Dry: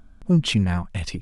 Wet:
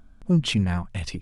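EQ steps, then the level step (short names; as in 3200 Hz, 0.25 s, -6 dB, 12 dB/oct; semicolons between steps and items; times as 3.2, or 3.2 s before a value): notches 60/120 Hz; -2.0 dB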